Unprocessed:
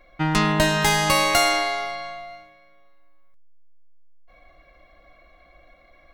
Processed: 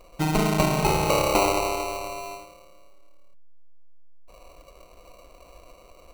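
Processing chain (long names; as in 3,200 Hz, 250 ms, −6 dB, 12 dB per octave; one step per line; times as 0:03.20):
in parallel at +2 dB: downward compressor, threshold −36 dBFS, peak gain reduction 19.5 dB
on the sum: sample-rate reduction 1,700 Hz, jitter 0%
level −3.5 dB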